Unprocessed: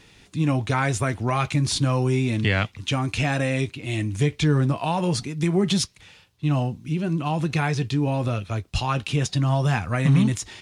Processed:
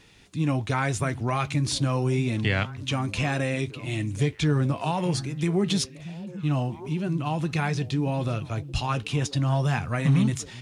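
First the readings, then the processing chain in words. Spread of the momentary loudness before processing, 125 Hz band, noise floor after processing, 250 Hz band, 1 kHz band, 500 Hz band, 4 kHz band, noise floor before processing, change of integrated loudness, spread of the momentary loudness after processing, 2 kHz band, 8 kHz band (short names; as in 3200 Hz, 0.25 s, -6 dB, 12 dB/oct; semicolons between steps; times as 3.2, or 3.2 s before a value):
6 LU, -3.0 dB, -44 dBFS, -3.0 dB, -3.0 dB, -3.0 dB, -3.0 dB, -54 dBFS, -3.0 dB, 6 LU, -3.0 dB, -3.0 dB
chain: delay with a stepping band-pass 0.627 s, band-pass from 160 Hz, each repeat 1.4 oct, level -11 dB; gain -3 dB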